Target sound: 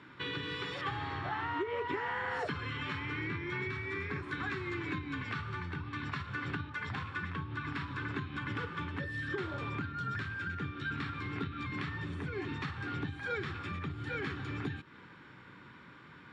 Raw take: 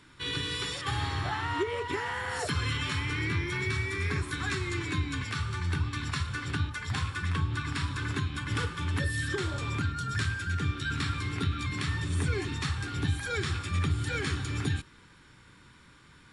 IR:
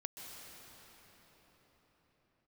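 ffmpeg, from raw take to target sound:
-af "acompressor=threshold=-36dB:ratio=6,highpass=140,lowpass=2400,volume=4.5dB"

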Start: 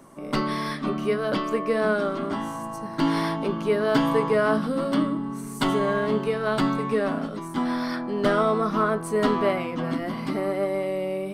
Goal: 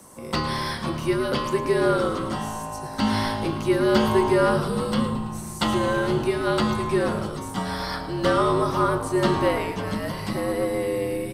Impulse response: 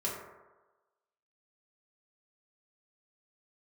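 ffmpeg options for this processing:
-filter_complex "[0:a]acrossover=split=5200[link_01][link_02];[link_02]acompressor=threshold=-53dB:ratio=4:attack=1:release=60[link_03];[link_01][link_03]amix=inputs=2:normalize=0,bass=frequency=250:gain=-6,treble=frequency=4000:gain=13,afreqshift=-63,asplit=7[link_04][link_05][link_06][link_07][link_08][link_09][link_10];[link_05]adelay=110,afreqshift=-110,volume=-12dB[link_11];[link_06]adelay=220,afreqshift=-220,volume=-16.9dB[link_12];[link_07]adelay=330,afreqshift=-330,volume=-21.8dB[link_13];[link_08]adelay=440,afreqshift=-440,volume=-26.6dB[link_14];[link_09]adelay=550,afreqshift=-550,volume=-31.5dB[link_15];[link_10]adelay=660,afreqshift=-660,volume=-36.4dB[link_16];[link_04][link_11][link_12][link_13][link_14][link_15][link_16]amix=inputs=7:normalize=0,asplit=2[link_17][link_18];[1:a]atrim=start_sample=2205,lowpass=2900[link_19];[link_18][link_19]afir=irnorm=-1:irlink=0,volume=-14.5dB[link_20];[link_17][link_20]amix=inputs=2:normalize=0"

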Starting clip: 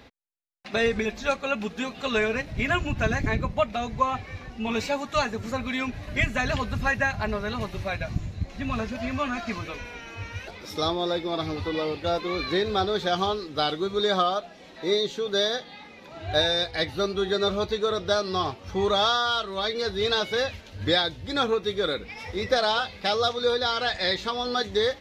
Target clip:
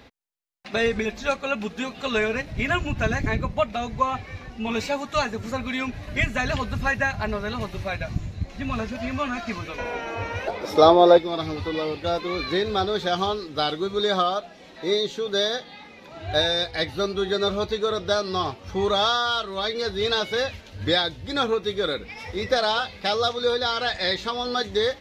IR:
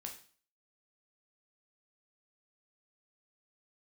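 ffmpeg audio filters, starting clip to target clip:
-filter_complex "[0:a]asettb=1/sr,asplit=3[link_01][link_02][link_03];[link_01]atrim=end=9.784[link_04];[link_02]atrim=start=9.78:end=11.18,asetpts=PTS-STARTPTS,afade=type=in:duration=0.004:curve=qsin,afade=type=out:start_time=1.396:duration=0.004:curve=qsin,equalizer=frequency=630:width_type=o:width=2.4:gain=15[link_05];[link_03]atrim=start=11.176[link_06];[link_04][link_05]acrossfade=duration=0.004:curve1=hsin:curve2=qsin[link_07];[link_07][link_06]acrossfade=duration=0.004:curve1=qsin:curve2=hsin,volume=1dB"

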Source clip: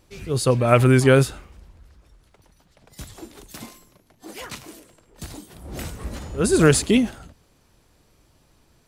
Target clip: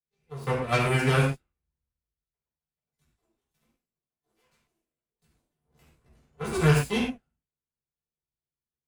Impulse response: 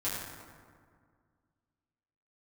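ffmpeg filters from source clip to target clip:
-filter_complex "[0:a]aeval=exprs='0.891*(cos(1*acos(clip(val(0)/0.891,-1,1)))-cos(1*PI/2))+0.178*(cos(3*acos(clip(val(0)/0.891,-1,1)))-cos(3*PI/2))+0.0158*(cos(6*acos(clip(val(0)/0.891,-1,1)))-cos(6*PI/2))+0.0501*(cos(7*acos(clip(val(0)/0.891,-1,1)))-cos(7*PI/2))':channel_layout=same[link_01];[1:a]atrim=start_sample=2205,afade=type=out:start_time=0.24:duration=0.01,atrim=end_sample=11025,asetrate=66150,aresample=44100[link_02];[link_01][link_02]afir=irnorm=-1:irlink=0,acrossover=split=140|3000[link_03][link_04][link_05];[link_04]acompressor=threshold=-25dB:ratio=2.5[link_06];[link_03][link_06][link_05]amix=inputs=3:normalize=0"

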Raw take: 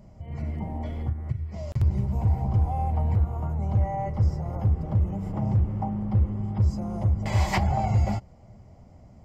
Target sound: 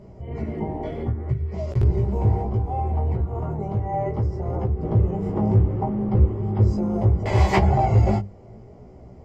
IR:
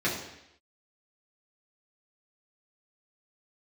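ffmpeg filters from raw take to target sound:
-filter_complex "[0:a]lowpass=frequency=3600:poles=1,equalizer=frequency=400:width_type=o:width=0.48:gain=13.5,bandreject=frequency=50:width_type=h:width=6,bandreject=frequency=100:width_type=h:width=6,bandreject=frequency=150:width_type=h:width=6,bandreject=frequency=200:width_type=h:width=6,asettb=1/sr,asplit=3[link_01][link_02][link_03];[link_01]atrim=end=2.414[link_04];[link_02]atrim=start=2.41:end=4.83,asetpts=PTS-STARTPTS,afade=type=in:duration=0.004:curve=qsin,afade=type=out:start_time=2.416:duration=0.004:curve=qsin,acompressor=threshold=-25dB:ratio=6[link_05];[link_03]atrim=start=4.826[link_06];[link_04][link_05]acrossfade=duration=0.004:curve1=hsin:curve2=qsin[link_07];[link_07][link_06]acrossfade=duration=0.004:curve1=qsin:curve2=hsin,flanger=delay=15.5:depth=4:speed=0.66,volume=8dB"

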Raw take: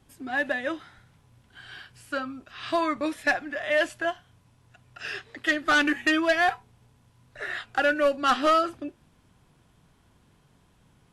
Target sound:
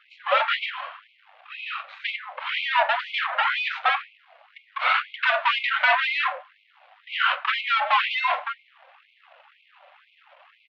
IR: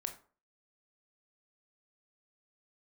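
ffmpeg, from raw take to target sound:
-filter_complex "[0:a]equalizer=frequency=560:width=2.2:gain=12,asplit=2[link_01][link_02];[link_02]acontrast=72,volume=-1dB[link_03];[link_01][link_03]amix=inputs=2:normalize=0,aeval=exprs='clip(val(0),-1,0.158)':channel_layout=same,asetrate=36028,aresample=44100,atempo=1.22405,aeval=exprs='max(val(0),0)':channel_layout=same,flanger=delay=2.2:depth=2.9:regen=-35:speed=0.73:shape=triangular,highpass=frequency=450:width_type=q:width=0.5412,highpass=frequency=450:width_type=q:width=1.307,lowpass=frequency=3300:width_type=q:width=0.5176,lowpass=frequency=3300:width_type=q:width=0.7071,lowpass=frequency=3300:width_type=q:width=1.932,afreqshift=-91,asplit=2[link_04][link_05];[1:a]atrim=start_sample=2205[link_06];[link_05][link_06]afir=irnorm=-1:irlink=0,volume=1.5dB[link_07];[link_04][link_07]amix=inputs=2:normalize=0,asetrate=45938,aresample=44100,alimiter=level_in=16dB:limit=-1dB:release=50:level=0:latency=1,afftfilt=real='re*gte(b*sr/1024,500*pow(2100/500,0.5+0.5*sin(2*PI*2*pts/sr)))':imag='im*gte(b*sr/1024,500*pow(2100/500,0.5+0.5*sin(2*PI*2*pts/sr)))':win_size=1024:overlap=0.75,volume=-7.5dB"

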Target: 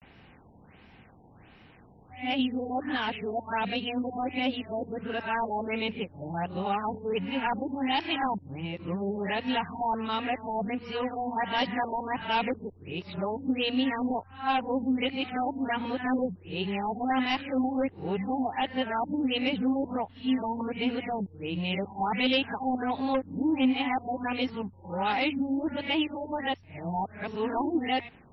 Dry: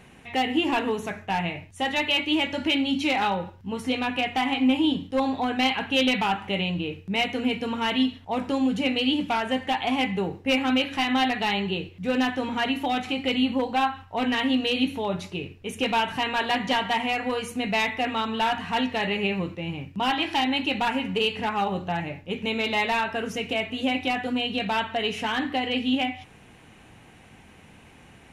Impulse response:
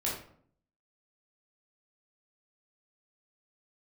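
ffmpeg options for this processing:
-af "areverse,afftfilt=real='re*lt(b*sr/1024,960*pow(5800/960,0.5+0.5*sin(2*PI*1.4*pts/sr)))':imag='im*lt(b*sr/1024,960*pow(5800/960,0.5+0.5*sin(2*PI*1.4*pts/sr)))':win_size=1024:overlap=0.75,volume=-3.5dB"

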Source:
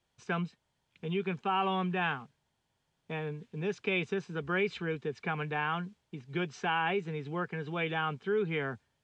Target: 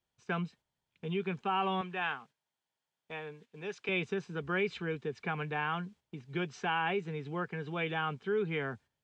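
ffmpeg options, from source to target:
ffmpeg -i in.wav -filter_complex "[0:a]asettb=1/sr,asplit=3[link_01][link_02][link_03];[link_01]atrim=end=1.814[link_04];[link_02]atrim=start=1.81:end=3.89,asetpts=PTS-STARTPTS,afade=type=in:duration=0.004:curve=qsin,afade=type=out:start_time=2.076:duration=0.004:curve=qsin,highpass=frequency=570:poles=1[link_05];[link_03]atrim=start=3.886[link_06];[link_04][link_05]acrossfade=duration=0.004:curve1=hsin:curve2=qsin[link_07];[link_07][link_06]acrossfade=duration=0.004:curve1=qsin:curve2=hsin,agate=range=-7dB:threshold=-54dB:ratio=16:detection=peak,volume=-1.5dB" out.wav

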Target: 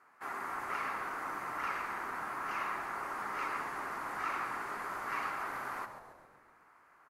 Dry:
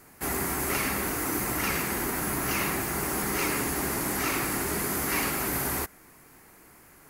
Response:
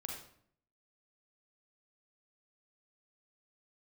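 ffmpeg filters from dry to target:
-filter_complex "[0:a]bandpass=frequency=1200:width_type=q:width=2.3:csg=0,asplit=2[link_01][link_02];[link_02]asplit=6[link_03][link_04][link_05][link_06][link_07][link_08];[link_03]adelay=136,afreqshift=-140,volume=-10dB[link_09];[link_04]adelay=272,afreqshift=-280,volume=-15.4dB[link_10];[link_05]adelay=408,afreqshift=-420,volume=-20.7dB[link_11];[link_06]adelay=544,afreqshift=-560,volume=-26.1dB[link_12];[link_07]adelay=680,afreqshift=-700,volume=-31.4dB[link_13];[link_08]adelay=816,afreqshift=-840,volume=-36.8dB[link_14];[link_09][link_10][link_11][link_12][link_13][link_14]amix=inputs=6:normalize=0[link_15];[link_01][link_15]amix=inputs=2:normalize=0,volume=-1dB"

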